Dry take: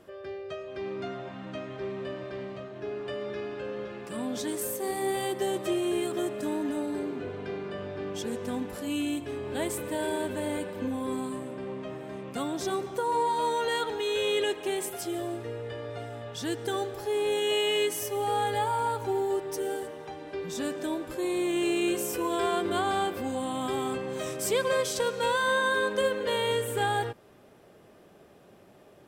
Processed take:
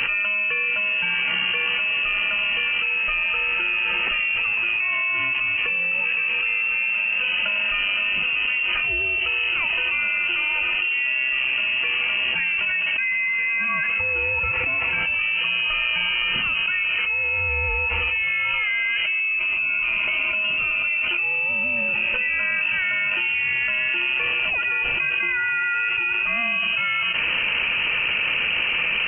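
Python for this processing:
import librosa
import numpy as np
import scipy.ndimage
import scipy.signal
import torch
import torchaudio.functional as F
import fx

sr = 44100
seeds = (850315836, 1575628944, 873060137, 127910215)

y = fx.peak_eq(x, sr, hz=1200.0, db=-9.5, octaves=0.54, at=(19.2, 21.77))
y = fx.freq_invert(y, sr, carrier_hz=3000)
y = fx.env_flatten(y, sr, amount_pct=100)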